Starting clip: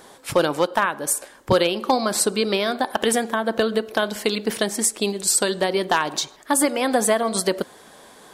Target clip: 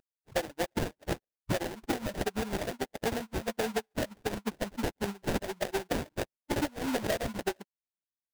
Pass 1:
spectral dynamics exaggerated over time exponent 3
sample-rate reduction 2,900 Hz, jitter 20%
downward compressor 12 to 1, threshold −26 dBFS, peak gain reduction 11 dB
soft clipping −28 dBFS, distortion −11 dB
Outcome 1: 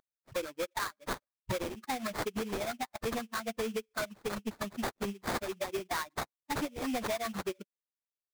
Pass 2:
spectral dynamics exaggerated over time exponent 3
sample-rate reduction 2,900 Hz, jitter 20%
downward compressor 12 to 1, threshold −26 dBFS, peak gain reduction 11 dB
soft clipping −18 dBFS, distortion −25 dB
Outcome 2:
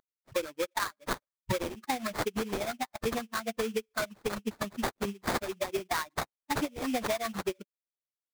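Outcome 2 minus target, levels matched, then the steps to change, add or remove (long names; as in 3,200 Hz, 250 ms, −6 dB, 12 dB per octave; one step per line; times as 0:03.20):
sample-rate reduction: distortion −13 dB
change: sample-rate reduction 1,200 Hz, jitter 20%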